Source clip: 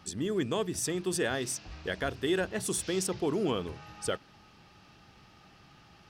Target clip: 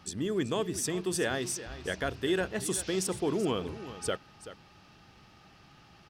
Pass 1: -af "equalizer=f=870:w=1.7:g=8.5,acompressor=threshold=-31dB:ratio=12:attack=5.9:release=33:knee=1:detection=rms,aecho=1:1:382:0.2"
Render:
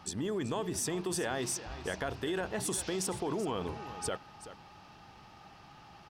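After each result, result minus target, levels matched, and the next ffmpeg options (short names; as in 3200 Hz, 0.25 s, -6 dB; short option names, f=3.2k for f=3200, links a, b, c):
compressor: peak gain reduction +8.5 dB; 1000 Hz band +3.5 dB
-af "equalizer=f=870:w=1.7:g=8.5,aecho=1:1:382:0.2"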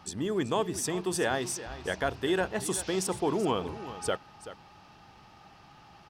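1000 Hz band +5.0 dB
-af "aecho=1:1:382:0.2"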